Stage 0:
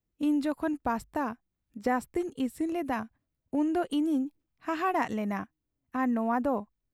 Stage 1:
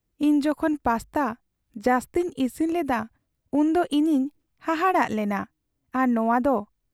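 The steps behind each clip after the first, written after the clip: peaking EQ 210 Hz -2 dB; trim +7 dB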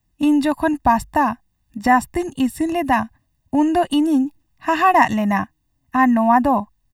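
comb 1.1 ms, depth 89%; trim +4.5 dB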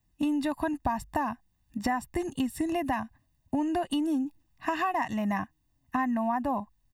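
compression, threshold -22 dBFS, peak gain reduction 13 dB; trim -4 dB

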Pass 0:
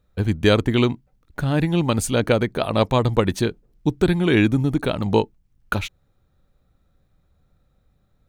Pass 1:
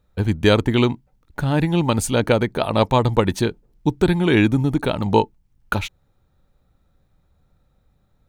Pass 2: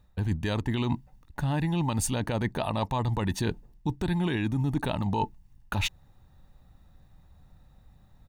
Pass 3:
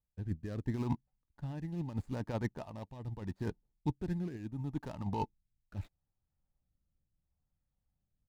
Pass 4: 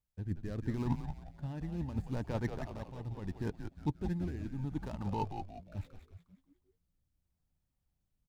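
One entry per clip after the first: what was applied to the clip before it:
peaking EQ 890 Hz +6.5 dB 0.2 oct; trim +1 dB
comb 1.1 ms, depth 44%; peak limiter -11.5 dBFS, peak gain reduction 10 dB; reverse; compression 5:1, threshold -29 dBFS, peak gain reduction 12 dB; reverse; trim +3.5 dB
median filter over 15 samples; rotary cabinet horn 0.75 Hz; upward expansion 2.5:1, over -40 dBFS; trim -2.5 dB
frequency-shifting echo 179 ms, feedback 43%, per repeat -95 Hz, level -6.5 dB

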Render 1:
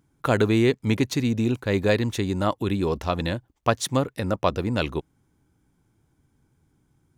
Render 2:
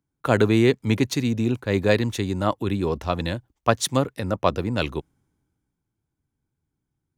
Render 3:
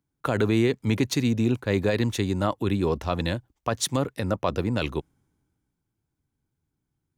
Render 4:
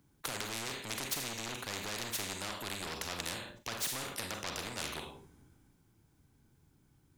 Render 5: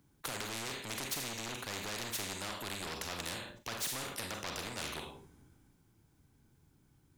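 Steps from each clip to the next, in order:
three bands expanded up and down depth 40%; trim +1 dB
peak limiter -12 dBFS, peak gain reduction 10.5 dB
Schroeder reverb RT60 0.33 s, combs from 31 ms, DRR 7 dB; saturation -22 dBFS, distortion -10 dB; spectrum-flattening compressor 4:1; trim +2 dB
saturation -27.5 dBFS, distortion -19 dB

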